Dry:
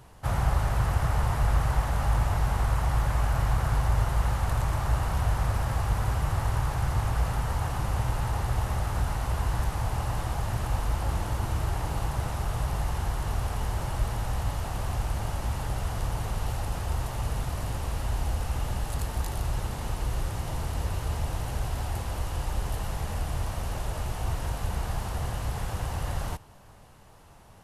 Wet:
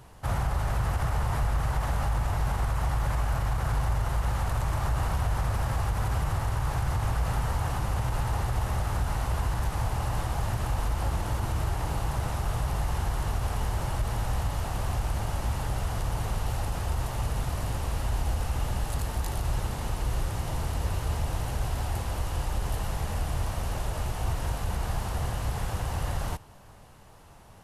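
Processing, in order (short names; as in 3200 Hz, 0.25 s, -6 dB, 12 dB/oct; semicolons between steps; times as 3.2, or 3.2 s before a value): limiter -20 dBFS, peak gain reduction 6.5 dB; gain +1 dB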